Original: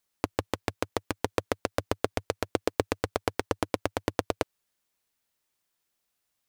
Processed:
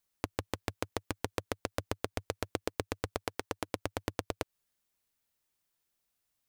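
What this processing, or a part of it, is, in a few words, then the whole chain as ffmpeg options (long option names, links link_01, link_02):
ASMR close-microphone chain: -filter_complex "[0:a]lowshelf=frequency=150:gain=6.5,acompressor=threshold=-25dB:ratio=6,highshelf=frequency=9200:gain=3.5,asettb=1/sr,asplit=3[link_01][link_02][link_03];[link_01]atrim=end=3.264[link_04];[link_02]atrim=start=3.26:end=3.68,asetpts=PTS-STARTPTS,afade=type=in:duration=0.004:curve=qsin,afade=type=out:start_time=0.416:duration=0.004:curve=qsin,lowshelf=frequency=180:gain=-8.5[link_05];[link_03]atrim=start=3.676[link_06];[link_04][link_05]acrossfade=duration=0.004:curve1=hsin:curve2=qsin[link_07];[link_07][link_06]acrossfade=duration=0.004:curve1=qsin:curve2=hsin,volume=-4dB"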